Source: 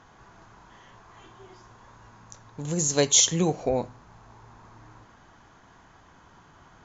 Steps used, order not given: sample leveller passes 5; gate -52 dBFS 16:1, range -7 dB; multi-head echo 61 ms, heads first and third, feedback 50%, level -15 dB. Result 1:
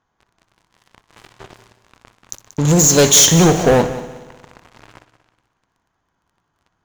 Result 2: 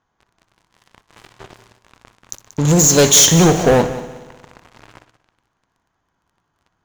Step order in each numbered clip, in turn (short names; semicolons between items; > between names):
sample leveller > gate > multi-head echo; sample leveller > multi-head echo > gate